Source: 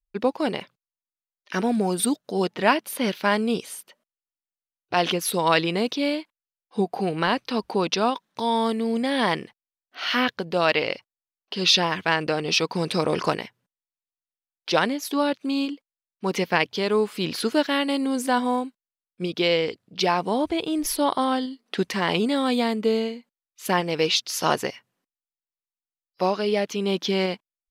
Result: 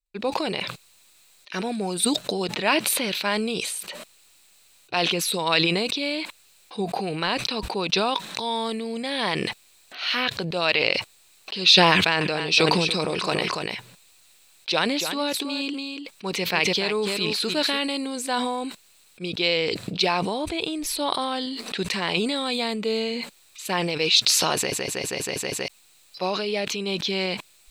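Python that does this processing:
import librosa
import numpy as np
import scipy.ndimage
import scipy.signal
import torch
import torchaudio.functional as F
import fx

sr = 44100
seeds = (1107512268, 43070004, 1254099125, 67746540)

y = fx.echo_single(x, sr, ms=288, db=-10.5, at=(11.92, 17.79))
y = fx.edit(y, sr, fx.stutter_over(start_s=24.56, slice_s=0.16, count=7), tone=tone)
y = fx.graphic_eq_31(y, sr, hz=(250, 2500, 4000, 8000), db=(-5, 8, 11, 10))
y = fx.sustainer(y, sr, db_per_s=21.0)
y = F.gain(torch.from_numpy(y), -4.5).numpy()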